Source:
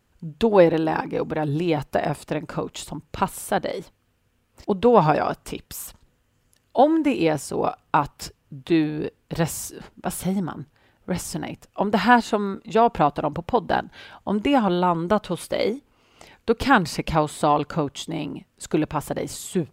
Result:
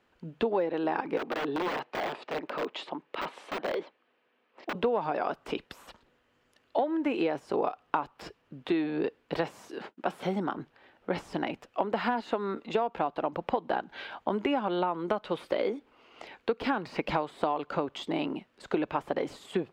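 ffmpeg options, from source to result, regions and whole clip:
ffmpeg -i in.wav -filter_complex "[0:a]asettb=1/sr,asplit=3[link_01][link_02][link_03];[link_01]atrim=end=1.174[link_04];[link_02]atrim=start=1.17:end=4.75,asetpts=PTS-STARTPTS,afade=type=in:duration=0.004:curve=qsin,afade=type=out:start_time=3.576:duration=0.004:curve=qsin,highpass=300,lowpass=3700,bandreject=frequency=1400:width=18,aeval=exprs='(mod(14.1*val(0)+1,2)-1)/14.1':channel_layout=same[link_05];[link_03]atrim=start=4.746[link_06];[link_04][link_05]acrossfade=duration=0.004:curve1=hsin:curve2=qsin[link_07];[link_07][link_06]acrossfade=duration=0.004:curve1=qsin:curve2=hsin,asettb=1/sr,asplit=3[link_08][link_09][link_10];[link_08]atrim=end=9.374[link_11];[link_09]atrim=start=9.37:end=10.54,asetpts=PTS-STARTPTS,afade=type=in:duration=0.004:curve=qsin,afade=type=out:start_time=1.166:duration=0.004:curve=qsin,highpass=150,agate=range=-33dB:threshold=-49dB:ratio=3:release=100:detection=peak[link_12];[link_10]atrim=start=10.536[link_13];[link_11][link_12]acrossfade=duration=0.004:curve1=hsin:curve2=qsin[link_14];[link_14][link_13]acrossfade=duration=0.004:curve1=qsin:curve2=hsin,deesser=0.85,acrossover=split=250 4200:gain=0.141 1 0.126[link_15][link_16][link_17];[link_15][link_16][link_17]amix=inputs=3:normalize=0,acompressor=threshold=-27dB:ratio=12,volume=2.5dB" out.wav

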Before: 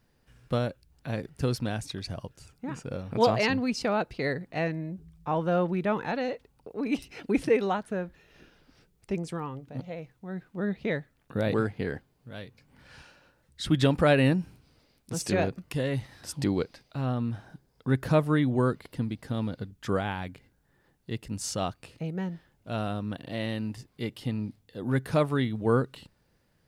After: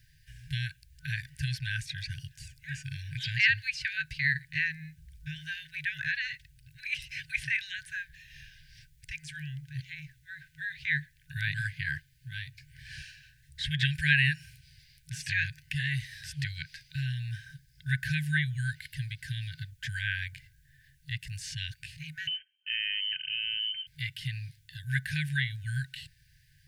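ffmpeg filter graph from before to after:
ffmpeg -i in.wav -filter_complex "[0:a]asettb=1/sr,asplit=3[link_01][link_02][link_03];[link_01]atrim=end=22.274[link_04];[link_02]atrim=start=22.27:end=23.87,asetpts=PTS-STARTPTS,afade=type=in:duration=0.004:curve=qsin,afade=type=out:start_time=1.596:duration=0.004:curve=qsin,agate=range=-19dB:threshold=-56dB:ratio=16:release=100:detection=peak,acompressor=threshold=-34dB:ratio=6:attack=3.2:release=140:knee=1:detection=peak,lowpass=frequency=2700:width_type=q:width=0.5098,lowpass=frequency=2700:width_type=q:width=0.6013,lowpass=frequency=2700:width_type=q:width=0.9,lowpass=frequency=2700:width_type=q:width=2.563,afreqshift=-3200[link_05];[link_03]atrim=start=23.866[link_06];[link_04][link_05]acrossfade=duration=0.004:curve1=hsin:curve2=qsin[link_07];[link_07][link_06]acrossfade=duration=0.004:curve1=qsin:curve2=hsin,acrossover=split=230[link_08][link_09];[link_08]acompressor=threshold=-52dB:ratio=2[link_10];[link_10][link_09]amix=inputs=2:normalize=0,afftfilt=real='re*(1-between(b*sr/4096,160,1500))':imag='im*(1-between(b*sr/4096,160,1500))':win_size=4096:overlap=0.75,acrossover=split=3200[link_11][link_12];[link_12]acompressor=threshold=-54dB:ratio=4:attack=1:release=60[link_13];[link_11][link_13]amix=inputs=2:normalize=0,volume=8.5dB" out.wav

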